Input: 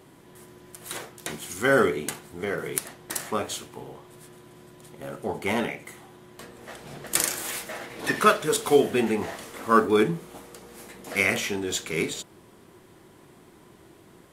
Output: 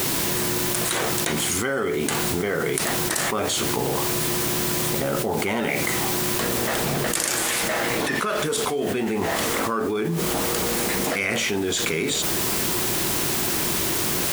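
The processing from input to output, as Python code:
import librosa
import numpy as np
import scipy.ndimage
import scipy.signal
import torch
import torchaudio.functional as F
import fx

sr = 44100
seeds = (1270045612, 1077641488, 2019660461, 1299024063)

p1 = scipy.signal.sosfilt(scipy.signal.butter(2, 11000.0, 'lowpass', fs=sr, output='sos'), x)
p2 = fx.quant_dither(p1, sr, seeds[0], bits=6, dither='triangular')
p3 = p1 + (p2 * librosa.db_to_amplitude(-9.5))
p4 = fx.env_flatten(p3, sr, amount_pct=100)
y = p4 * librosa.db_to_amplitude(-13.0)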